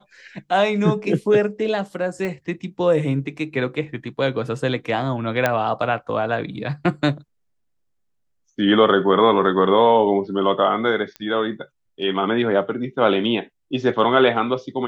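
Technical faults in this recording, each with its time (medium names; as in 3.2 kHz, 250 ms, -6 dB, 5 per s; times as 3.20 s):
2.25 s: pop -16 dBFS
5.46 s: pop -5 dBFS
11.16 s: pop -18 dBFS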